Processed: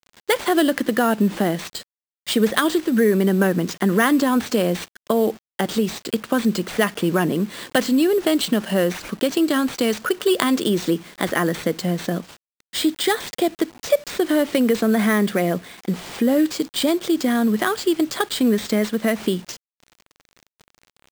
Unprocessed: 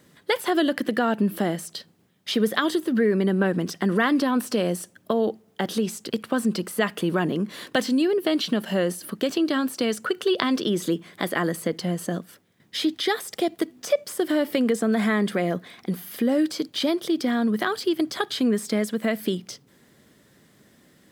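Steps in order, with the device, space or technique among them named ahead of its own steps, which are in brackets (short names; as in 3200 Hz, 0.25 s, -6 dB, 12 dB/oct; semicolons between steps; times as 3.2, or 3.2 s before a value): early 8-bit sampler (sample-rate reducer 12000 Hz, jitter 0%; bit-crush 8-bit); gain +4 dB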